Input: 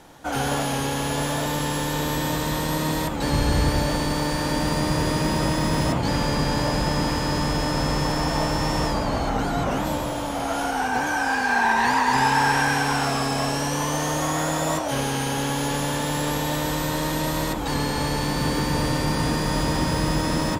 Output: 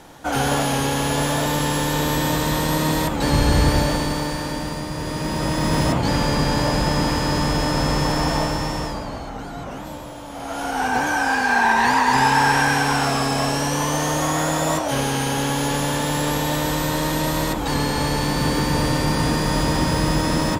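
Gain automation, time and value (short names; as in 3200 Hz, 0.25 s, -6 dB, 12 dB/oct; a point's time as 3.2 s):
3.77 s +4 dB
4.9 s -6 dB
5.75 s +3 dB
8.31 s +3 dB
9.29 s -8 dB
10.25 s -8 dB
10.86 s +3 dB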